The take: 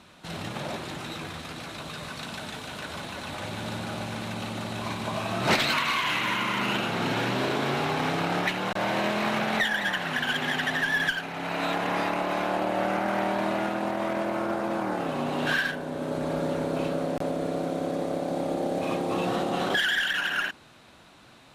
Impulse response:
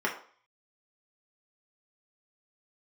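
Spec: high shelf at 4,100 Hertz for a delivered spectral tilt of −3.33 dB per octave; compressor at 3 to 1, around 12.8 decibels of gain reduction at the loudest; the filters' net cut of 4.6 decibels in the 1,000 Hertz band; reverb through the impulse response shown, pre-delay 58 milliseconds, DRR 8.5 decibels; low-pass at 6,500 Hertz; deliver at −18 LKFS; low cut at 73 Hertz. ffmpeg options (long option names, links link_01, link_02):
-filter_complex "[0:a]highpass=73,lowpass=6500,equalizer=frequency=1000:width_type=o:gain=-6,highshelf=frequency=4100:gain=-5,acompressor=threshold=-39dB:ratio=3,asplit=2[link_01][link_02];[1:a]atrim=start_sample=2205,adelay=58[link_03];[link_02][link_03]afir=irnorm=-1:irlink=0,volume=-18.5dB[link_04];[link_01][link_04]amix=inputs=2:normalize=0,volume=20.5dB"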